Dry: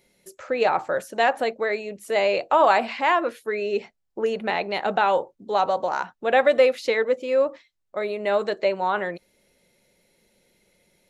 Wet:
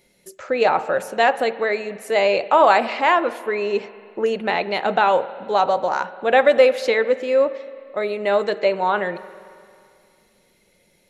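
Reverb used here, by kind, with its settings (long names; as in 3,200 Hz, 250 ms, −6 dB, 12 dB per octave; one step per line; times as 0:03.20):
spring reverb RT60 2.4 s, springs 44/55 ms, chirp 25 ms, DRR 15 dB
level +3.5 dB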